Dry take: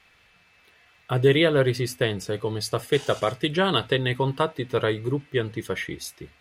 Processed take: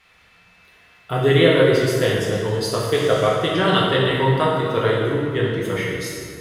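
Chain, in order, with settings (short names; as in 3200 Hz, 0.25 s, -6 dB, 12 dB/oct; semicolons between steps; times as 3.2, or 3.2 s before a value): plate-style reverb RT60 2.1 s, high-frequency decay 0.65×, DRR -4.5 dB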